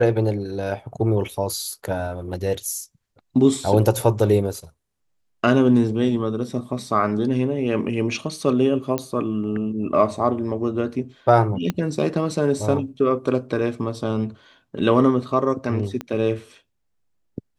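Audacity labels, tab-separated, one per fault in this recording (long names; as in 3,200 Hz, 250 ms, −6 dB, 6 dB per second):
8.980000	8.980000	click −10 dBFS
11.700000	11.700000	click −10 dBFS
16.010000	16.010000	click −15 dBFS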